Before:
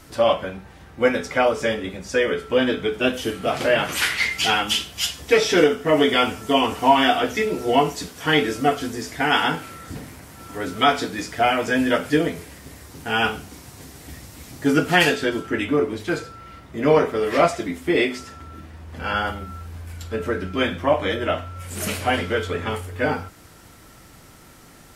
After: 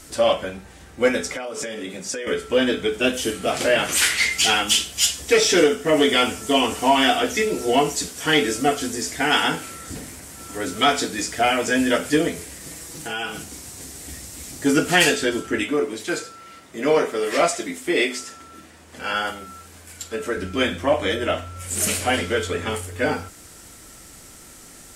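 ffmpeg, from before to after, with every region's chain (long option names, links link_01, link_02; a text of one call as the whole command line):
ffmpeg -i in.wav -filter_complex "[0:a]asettb=1/sr,asplit=3[link_01][link_02][link_03];[link_01]atrim=end=1.354[link_04];[link_02]atrim=start=1.35:end=2.27,asetpts=PTS-STARTPTS,afade=type=in:duration=0.004:curve=qsin,afade=type=out:start_time=0.916:duration=0.004:curve=qsin,highpass=frequency=120:width=0.5412,highpass=frequency=120:width=1.3066,acompressor=threshold=-27dB:ratio=10:attack=3.2:release=140:knee=1:detection=peak[link_05];[link_03]atrim=start=2.266[link_06];[link_04][link_05]acrossfade=duration=0.004:curve1=hsin:curve2=qsin[link_07];[link_07][link_06]acrossfade=duration=0.004:curve1=qsin:curve2=hsin,asettb=1/sr,asplit=3[link_08][link_09][link_10];[link_08]atrim=end=12.604[link_11];[link_09]atrim=start=12.6:end=13.44,asetpts=PTS-STARTPTS,afade=type=in:duration=0.004:curve=qsin,afade=type=out:start_time=0.836:duration=0.004:curve=qsin,aecho=1:1:6.1:0.76,atrim=end_sample=37044,acompressor=threshold=-28dB:ratio=3:attack=3.2:release=140:knee=1:detection=peak[link_12];[link_10]atrim=start=13.436[link_13];[link_11][link_12]acrossfade=duration=0.004:curve1=hsin:curve2=qsin[link_14];[link_14][link_13]acrossfade=duration=0.004:curve1=qsin:curve2=hsin,asettb=1/sr,asplit=3[link_15][link_16][link_17];[link_15]atrim=end=15.634[link_18];[link_16]atrim=start=15.63:end=20.37,asetpts=PTS-STARTPTS,afade=type=in:duration=0.004:curve=qsin,afade=type=out:start_time=4.736:duration=0.004:curve=qsin,highpass=170,equalizer=frequency=230:width_type=o:width=2.5:gain=-3[link_19];[link_17]atrim=start=20.366[link_20];[link_18][link_19]acrossfade=duration=0.004:curve1=hsin:curve2=qsin[link_21];[link_21][link_20]acrossfade=duration=0.004:curve1=qsin:curve2=hsin,equalizer=frequency=125:width_type=o:width=1:gain=-6,equalizer=frequency=1000:width_type=o:width=1:gain=-4,equalizer=frequency=8000:width_type=o:width=1:gain=10,acontrast=43,volume=-4dB" out.wav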